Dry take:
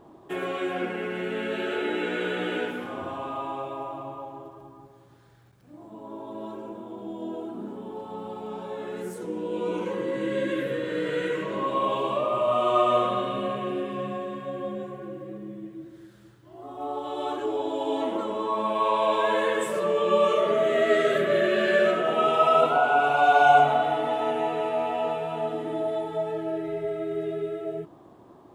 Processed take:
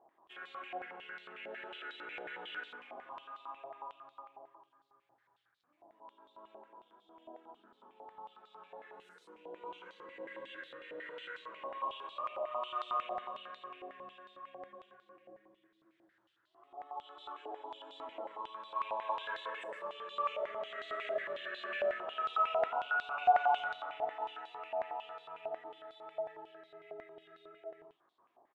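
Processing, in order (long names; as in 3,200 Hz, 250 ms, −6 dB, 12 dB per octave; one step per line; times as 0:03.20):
single-tap delay 110 ms −5.5 dB
band-pass on a step sequencer 11 Hz 740–3,900 Hz
level −6 dB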